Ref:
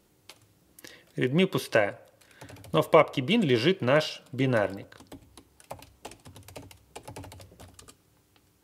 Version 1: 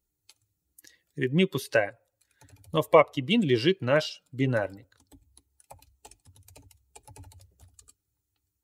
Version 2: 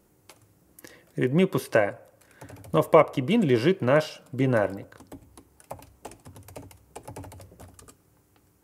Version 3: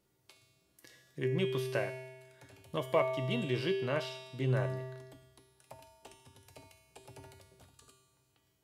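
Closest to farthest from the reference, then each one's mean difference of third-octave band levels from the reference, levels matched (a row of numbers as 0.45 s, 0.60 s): 2, 3, 1; 1.5 dB, 4.0 dB, 8.0 dB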